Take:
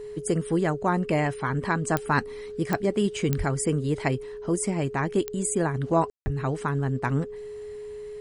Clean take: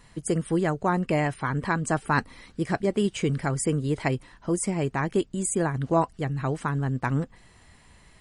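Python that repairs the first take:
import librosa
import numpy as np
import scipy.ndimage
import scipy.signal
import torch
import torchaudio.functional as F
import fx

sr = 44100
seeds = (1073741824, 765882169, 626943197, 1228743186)

y = fx.fix_declick_ar(x, sr, threshold=10.0)
y = fx.notch(y, sr, hz=420.0, q=30.0)
y = fx.highpass(y, sr, hz=140.0, slope=24, at=(3.37, 3.49), fade=0.02)
y = fx.highpass(y, sr, hz=140.0, slope=24, at=(6.24, 6.36), fade=0.02)
y = fx.fix_ambience(y, sr, seeds[0], print_start_s=7.36, print_end_s=7.86, start_s=6.1, end_s=6.26)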